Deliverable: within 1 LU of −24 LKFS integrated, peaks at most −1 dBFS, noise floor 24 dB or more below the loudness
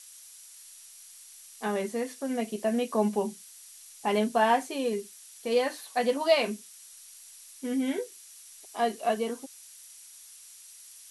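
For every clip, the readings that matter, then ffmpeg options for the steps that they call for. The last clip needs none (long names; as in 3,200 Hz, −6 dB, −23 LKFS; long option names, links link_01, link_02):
interfering tone 5,800 Hz; level of the tone −60 dBFS; background noise floor −51 dBFS; target noise floor −53 dBFS; integrated loudness −29.0 LKFS; sample peak −10.5 dBFS; target loudness −24.0 LKFS
→ -af "bandreject=frequency=5800:width=30"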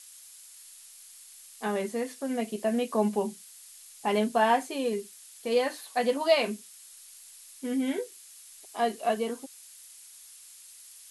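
interfering tone none found; background noise floor −51 dBFS; target noise floor −53 dBFS
→ -af "afftdn=noise_reduction=6:noise_floor=-51"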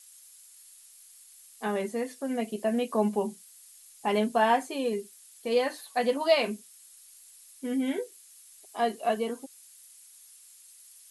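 background noise floor −54 dBFS; integrated loudness −29.0 LKFS; sample peak −10.5 dBFS; target loudness −24.0 LKFS
→ -af "volume=5dB"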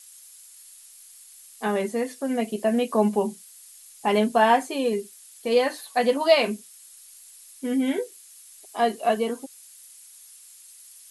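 integrated loudness −24.0 LKFS; sample peak −5.5 dBFS; background noise floor −49 dBFS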